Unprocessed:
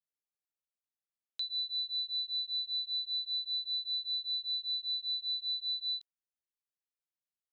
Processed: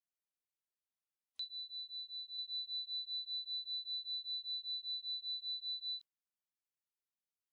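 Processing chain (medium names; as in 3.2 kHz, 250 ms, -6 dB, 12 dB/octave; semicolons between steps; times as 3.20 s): 1.44–2.37 s: low-pass 3.6 kHz -> 3.5 kHz; trim -6.5 dB; WMA 128 kbps 44.1 kHz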